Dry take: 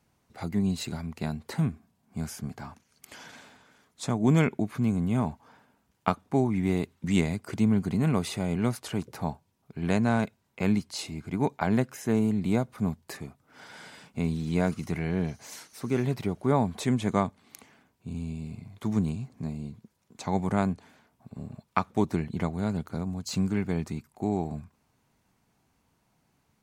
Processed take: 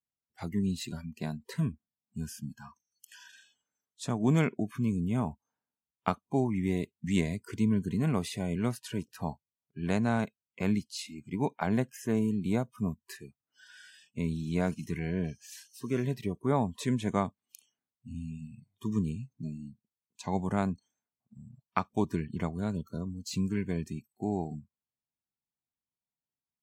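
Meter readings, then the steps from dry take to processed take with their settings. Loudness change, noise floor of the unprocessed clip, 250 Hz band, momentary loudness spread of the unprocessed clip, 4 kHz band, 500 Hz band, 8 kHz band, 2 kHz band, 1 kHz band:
-3.5 dB, -72 dBFS, -3.5 dB, 17 LU, -3.5 dB, -3.5 dB, -3.5 dB, -3.5 dB, -4.0 dB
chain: spectral noise reduction 29 dB; trim -3.5 dB

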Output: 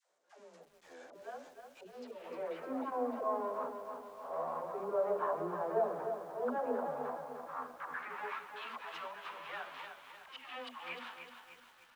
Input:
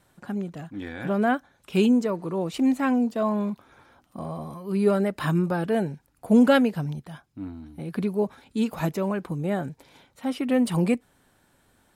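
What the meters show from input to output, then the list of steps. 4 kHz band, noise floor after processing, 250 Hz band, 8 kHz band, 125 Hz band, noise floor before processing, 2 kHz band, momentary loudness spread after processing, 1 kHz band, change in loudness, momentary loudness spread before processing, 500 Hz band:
-12.5 dB, -64 dBFS, -24.5 dB, no reading, -30.0 dB, -65 dBFS, -11.5 dB, 18 LU, -6.5 dB, -14.5 dB, 16 LU, -10.5 dB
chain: jump at every zero crossing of -27 dBFS; treble shelf 2.8 kHz -7.5 dB; spring tank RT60 2.2 s, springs 42 ms, chirp 75 ms, DRR 13.5 dB; gate with hold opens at -23 dBFS; band-pass sweep 520 Hz -> 3.1 kHz, 6.77–8.55 s; treble shelf 9.5 kHz +5.5 dB; doubling 12 ms -3 dB; band-pass sweep 6.8 kHz -> 1.1 kHz, 1.82–2.76 s; slow attack 166 ms; in parallel at +2 dB: compression 4:1, threshold -57 dBFS, peak gain reduction 19.5 dB; on the sum: phase dispersion lows, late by 130 ms, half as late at 410 Hz; bit-crushed delay 304 ms, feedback 55%, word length 11-bit, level -7 dB; trim +4.5 dB

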